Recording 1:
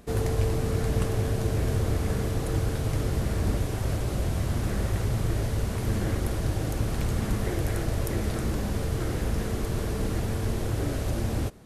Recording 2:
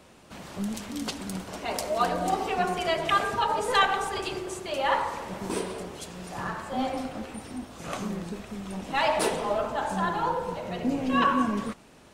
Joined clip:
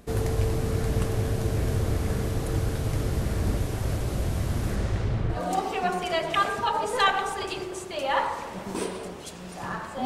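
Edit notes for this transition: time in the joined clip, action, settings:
recording 1
4.75–5.43 LPF 9500 Hz -> 1800 Hz
5.36 switch to recording 2 from 2.11 s, crossfade 0.14 s

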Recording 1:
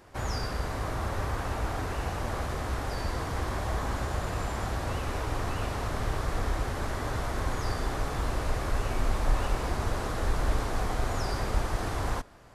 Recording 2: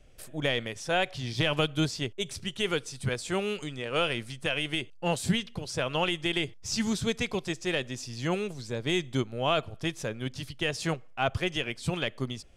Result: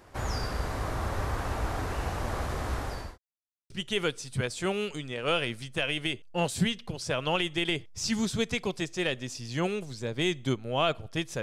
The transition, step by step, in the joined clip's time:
recording 1
2.67–3.18 fade out equal-power
3.18–3.7 mute
3.7 switch to recording 2 from 2.38 s

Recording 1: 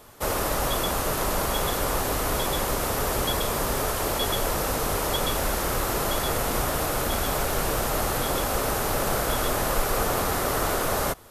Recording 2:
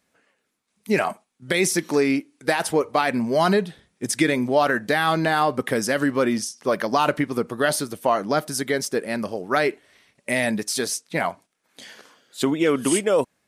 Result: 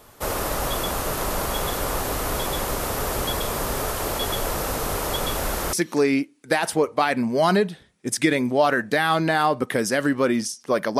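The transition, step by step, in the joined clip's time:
recording 1
5.73 switch to recording 2 from 1.7 s

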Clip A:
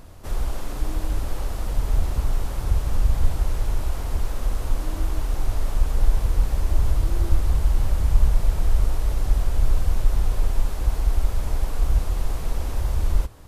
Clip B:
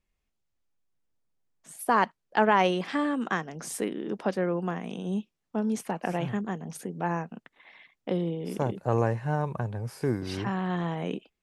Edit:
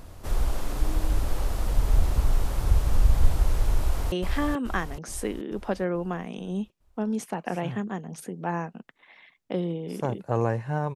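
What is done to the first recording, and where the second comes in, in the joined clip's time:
clip A
3.79–4.12 echo throw 0.43 s, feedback 50%, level -3.5 dB
4.12 switch to clip B from 2.69 s

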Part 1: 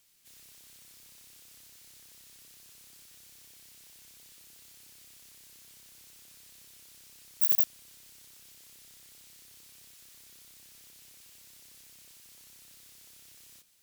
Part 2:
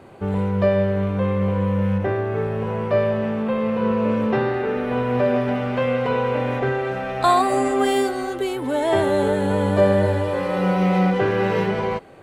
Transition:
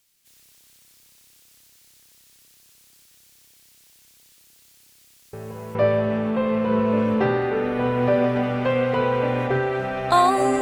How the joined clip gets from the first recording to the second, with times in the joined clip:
part 1
5.33 add part 2 from 2.45 s 0.42 s -10.5 dB
5.75 switch to part 2 from 2.87 s

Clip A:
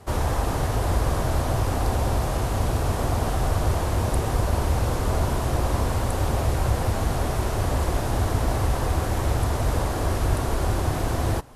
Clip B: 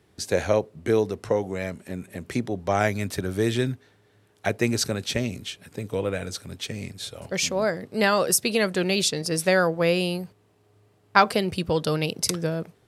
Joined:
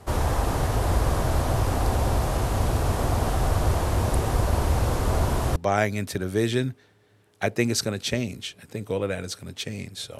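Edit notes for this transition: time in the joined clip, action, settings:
clip A
5.56 switch to clip B from 2.59 s

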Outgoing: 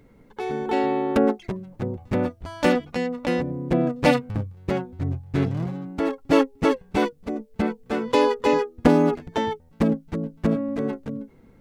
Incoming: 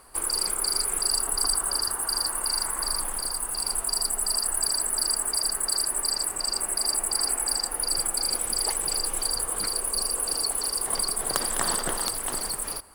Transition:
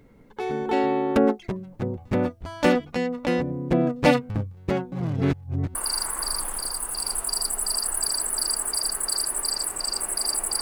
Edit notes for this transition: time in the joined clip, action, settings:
outgoing
4.92–5.75 reverse
5.75 switch to incoming from 2.35 s

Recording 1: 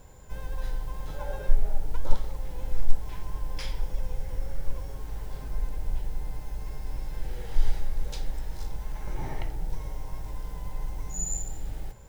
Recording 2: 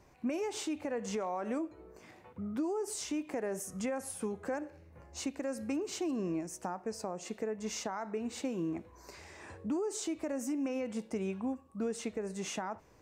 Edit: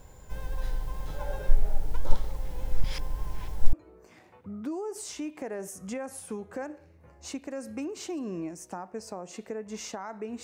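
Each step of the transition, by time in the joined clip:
recording 1
2.84–3.73 reverse
3.73 switch to recording 2 from 1.65 s

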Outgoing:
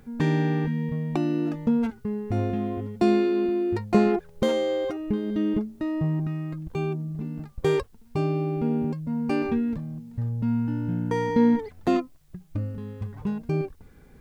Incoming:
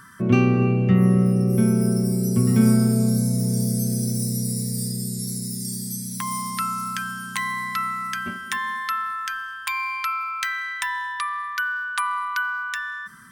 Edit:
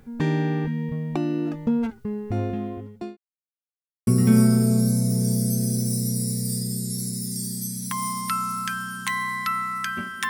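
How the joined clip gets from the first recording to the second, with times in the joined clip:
outgoing
2.28–3.17 fade out equal-power
3.17–4.07 mute
4.07 switch to incoming from 2.36 s

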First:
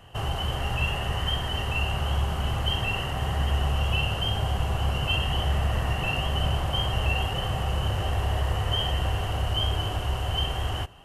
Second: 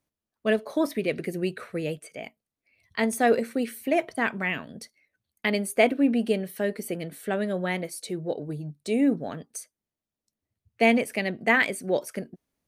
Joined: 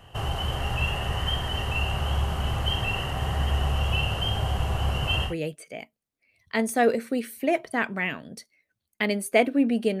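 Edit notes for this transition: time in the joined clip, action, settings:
first
5.29 switch to second from 1.73 s, crossfade 0.12 s

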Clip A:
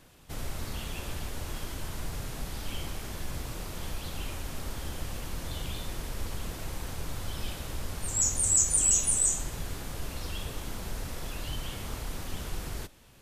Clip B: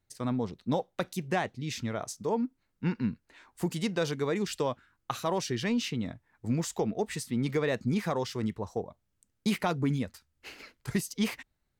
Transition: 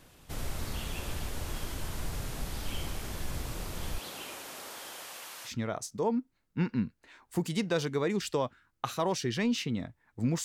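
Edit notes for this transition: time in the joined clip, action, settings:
clip A
3.98–5.52 HPF 270 Hz -> 1000 Hz
5.48 switch to clip B from 1.74 s, crossfade 0.08 s

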